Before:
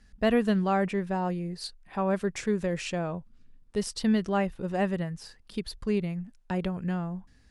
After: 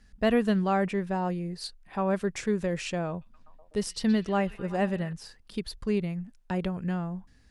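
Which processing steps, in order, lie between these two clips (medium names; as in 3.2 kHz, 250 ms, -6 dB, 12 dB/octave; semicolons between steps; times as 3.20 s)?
3.09–5.13 s: repeats whose band climbs or falls 124 ms, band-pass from 3.1 kHz, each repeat -0.7 oct, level -9.5 dB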